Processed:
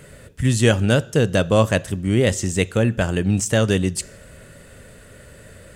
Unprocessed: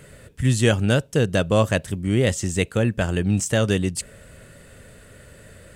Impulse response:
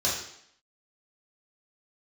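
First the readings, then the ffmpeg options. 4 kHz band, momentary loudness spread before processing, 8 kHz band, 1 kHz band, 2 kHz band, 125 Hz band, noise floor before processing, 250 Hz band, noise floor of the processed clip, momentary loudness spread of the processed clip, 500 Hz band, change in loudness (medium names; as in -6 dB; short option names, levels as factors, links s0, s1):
+2.0 dB, 5 LU, +2.5 dB, +2.5 dB, +2.0 dB, +1.5 dB, -48 dBFS, +2.0 dB, -45 dBFS, 5 LU, +2.5 dB, +2.0 dB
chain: -filter_complex "[0:a]asplit=2[s0][s1];[1:a]atrim=start_sample=2205[s2];[s1][s2]afir=irnorm=-1:irlink=0,volume=0.0376[s3];[s0][s3]amix=inputs=2:normalize=0,volume=1.26"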